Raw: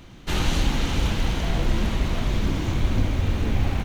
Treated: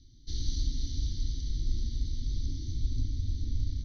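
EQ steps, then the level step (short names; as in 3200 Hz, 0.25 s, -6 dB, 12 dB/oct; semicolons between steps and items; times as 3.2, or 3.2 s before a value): elliptic band-stop 240–3500 Hz, stop band 70 dB; rippled Chebyshev low-pass 6200 Hz, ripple 6 dB; fixed phaser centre 710 Hz, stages 6; 0.0 dB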